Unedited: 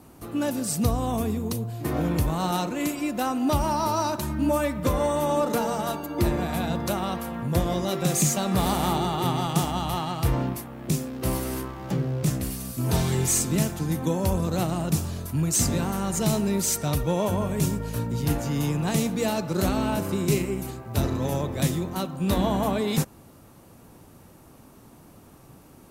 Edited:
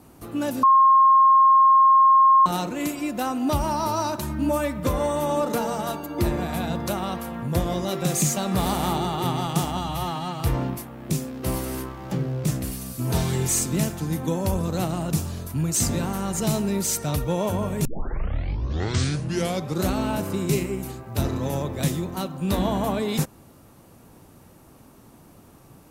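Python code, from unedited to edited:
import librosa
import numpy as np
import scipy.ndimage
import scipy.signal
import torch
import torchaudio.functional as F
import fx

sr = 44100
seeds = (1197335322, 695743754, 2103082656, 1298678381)

y = fx.edit(x, sr, fx.bleep(start_s=0.63, length_s=1.83, hz=1070.0, db=-11.5),
    fx.stretch_span(start_s=9.77, length_s=0.42, factor=1.5),
    fx.tape_start(start_s=17.64, length_s=2.01), tone=tone)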